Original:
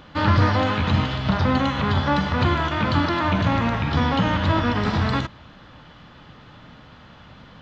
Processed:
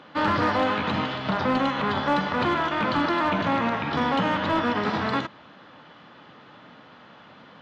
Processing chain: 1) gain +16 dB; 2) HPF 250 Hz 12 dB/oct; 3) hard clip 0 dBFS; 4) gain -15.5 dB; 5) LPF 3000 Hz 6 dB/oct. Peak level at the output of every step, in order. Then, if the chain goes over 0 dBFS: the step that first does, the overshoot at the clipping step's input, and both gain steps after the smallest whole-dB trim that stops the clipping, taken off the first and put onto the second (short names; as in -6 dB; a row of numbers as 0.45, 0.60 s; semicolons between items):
+10.0, +6.5, 0.0, -15.5, -15.5 dBFS; step 1, 6.5 dB; step 1 +9 dB, step 4 -8.5 dB